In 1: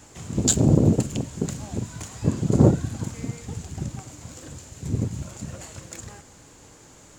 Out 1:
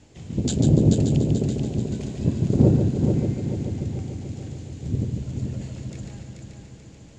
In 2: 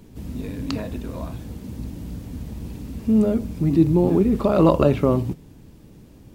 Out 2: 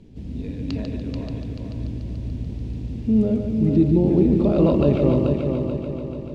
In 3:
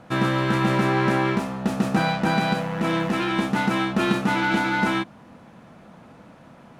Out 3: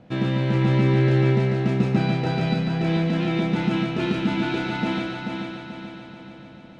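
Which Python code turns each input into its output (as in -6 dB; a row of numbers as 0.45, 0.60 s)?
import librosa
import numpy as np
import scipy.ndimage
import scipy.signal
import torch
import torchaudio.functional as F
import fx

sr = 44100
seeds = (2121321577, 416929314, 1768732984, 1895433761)

y = scipy.signal.sosfilt(scipy.signal.butter(2, 3800.0, 'lowpass', fs=sr, output='sos'), x)
y = fx.peak_eq(y, sr, hz=1200.0, db=-13.0, octaves=1.4)
y = fx.echo_heads(y, sr, ms=145, heads='first and third', feedback_pct=64, wet_db=-6.0)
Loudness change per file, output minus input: +1.0, -1.5, 0.0 LU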